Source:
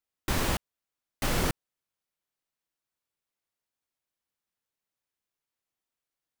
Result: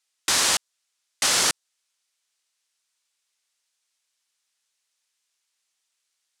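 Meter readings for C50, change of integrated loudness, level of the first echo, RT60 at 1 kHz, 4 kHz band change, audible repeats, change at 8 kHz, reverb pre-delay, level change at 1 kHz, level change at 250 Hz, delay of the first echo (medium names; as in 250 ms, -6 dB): no reverb, +10.0 dB, no echo, no reverb, +14.0 dB, no echo, +16.5 dB, no reverb, +5.0 dB, -6.0 dB, no echo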